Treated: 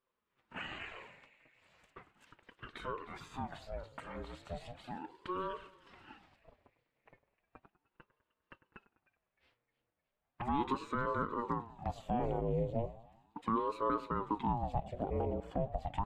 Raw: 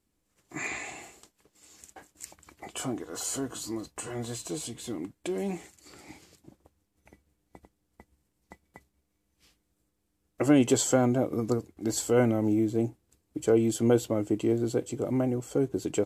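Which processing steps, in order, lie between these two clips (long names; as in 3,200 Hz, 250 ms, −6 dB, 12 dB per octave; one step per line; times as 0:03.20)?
high-pass filter 190 Hz 6 dB per octave
low-shelf EQ 400 Hz −10.5 dB
in parallel at +2 dB: downward compressor, threshold −37 dBFS, peak gain reduction 13.5 dB
on the sum: brickwall limiter −19 dBFS, peak gain reduction 6 dB
flanger swept by the level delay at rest 7.7 ms, full sweep at −28 dBFS
high-frequency loss of the air 490 metres
echo with a time of its own for lows and highs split 1,700 Hz, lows 101 ms, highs 307 ms, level −16 dB
ring modulator whose carrier an LFO sweeps 470 Hz, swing 65%, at 0.36 Hz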